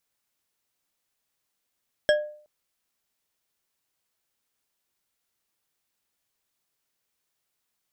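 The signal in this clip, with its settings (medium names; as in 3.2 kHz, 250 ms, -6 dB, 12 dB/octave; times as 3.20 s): glass hit bar, length 0.37 s, lowest mode 600 Hz, decay 0.51 s, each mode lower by 5 dB, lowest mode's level -14.5 dB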